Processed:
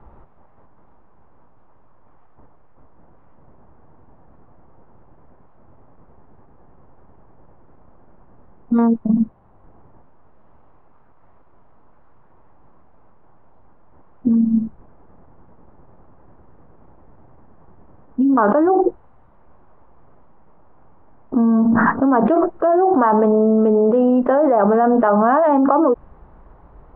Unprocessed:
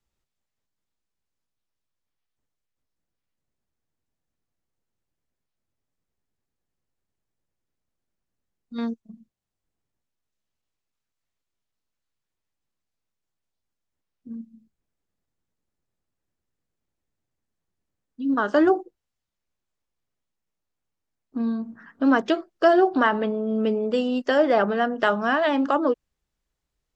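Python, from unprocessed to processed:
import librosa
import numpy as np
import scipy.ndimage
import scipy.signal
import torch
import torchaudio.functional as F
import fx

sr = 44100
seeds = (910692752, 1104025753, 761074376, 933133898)

y = fx.ladder_lowpass(x, sr, hz=1200.0, resonance_pct=40)
y = fx.env_flatten(y, sr, amount_pct=100)
y = y * librosa.db_to_amplitude(4.5)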